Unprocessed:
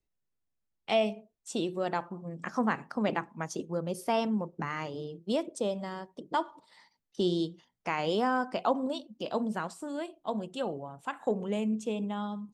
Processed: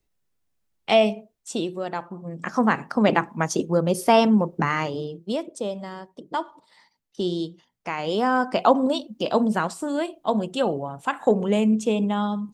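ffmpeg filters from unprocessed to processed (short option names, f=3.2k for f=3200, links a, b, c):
-af "volume=28dB,afade=t=out:st=1.12:d=0.77:silence=0.398107,afade=t=in:st=1.89:d=1.46:silence=0.281838,afade=t=out:st=4.66:d=0.7:silence=0.334965,afade=t=in:st=8.04:d=0.59:silence=0.398107"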